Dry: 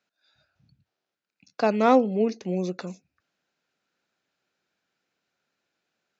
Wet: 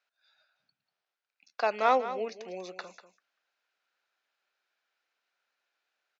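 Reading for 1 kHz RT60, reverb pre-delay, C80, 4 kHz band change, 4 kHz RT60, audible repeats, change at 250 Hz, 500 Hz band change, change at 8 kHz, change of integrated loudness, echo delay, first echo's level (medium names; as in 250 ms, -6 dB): no reverb, no reverb, no reverb, -2.5 dB, no reverb, 1, -19.5 dB, -7.5 dB, no reading, -6.5 dB, 193 ms, -12.5 dB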